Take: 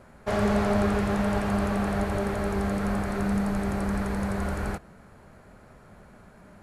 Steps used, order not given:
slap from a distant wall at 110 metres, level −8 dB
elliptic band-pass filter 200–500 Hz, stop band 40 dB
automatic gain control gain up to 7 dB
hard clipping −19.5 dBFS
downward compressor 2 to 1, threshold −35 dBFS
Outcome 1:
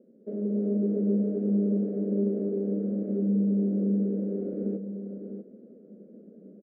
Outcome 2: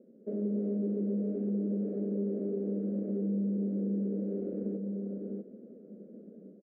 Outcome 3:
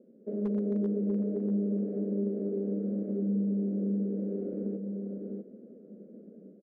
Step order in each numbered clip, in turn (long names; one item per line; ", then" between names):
hard clipping, then elliptic band-pass filter, then downward compressor, then slap from a distant wall, then automatic gain control
automatic gain control, then slap from a distant wall, then hard clipping, then elliptic band-pass filter, then downward compressor
elliptic band-pass filter, then hard clipping, then automatic gain control, then slap from a distant wall, then downward compressor